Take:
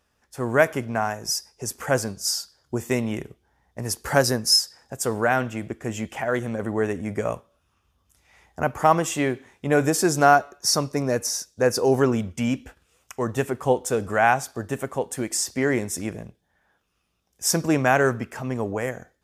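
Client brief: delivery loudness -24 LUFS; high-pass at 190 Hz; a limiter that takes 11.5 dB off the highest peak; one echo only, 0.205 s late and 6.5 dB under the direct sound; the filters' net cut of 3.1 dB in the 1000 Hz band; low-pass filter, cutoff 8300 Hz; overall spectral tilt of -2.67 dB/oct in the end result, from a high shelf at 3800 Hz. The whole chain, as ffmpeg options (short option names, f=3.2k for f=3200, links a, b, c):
-af "highpass=190,lowpass=8.3k,equalizer=f=1k:t=o:g=-5.5,highshelf=f=3.8k:g=8.5,alimiter=limit=-14.5dB:level=0:latency=1,aecho=1:1:205:0.473,volume=2.5dB"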